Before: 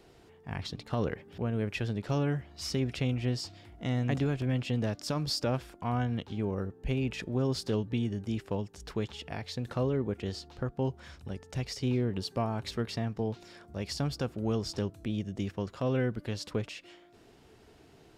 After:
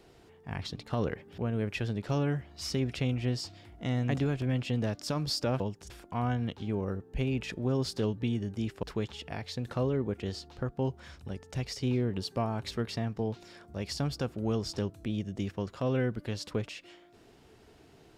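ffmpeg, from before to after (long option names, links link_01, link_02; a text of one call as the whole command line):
ffmpeg -i in.wav -filter_complex "[0:a]asplit=4[link_01][link_02][link_03][link_04];[link_01]atrim=end=5.602[link_05];[link_02]atrim=start=8.528:end=8.832[link_06];[link_03]atrim=start=5.598:end=8.532[link_07];[link_04]atrim=start=8.828[link_08];[link_05][link_06]acrossfade=duration=0.004:curve1=hsin:curve2=hsin[link_09];[link_09][link_07]acrossfade=duration=0.004:curve1=hsin:curve2=hsin[link_10];[link_10][link_08]acrossfade=duration=0.004:curve1=hsin:curve2=hsin" out.wav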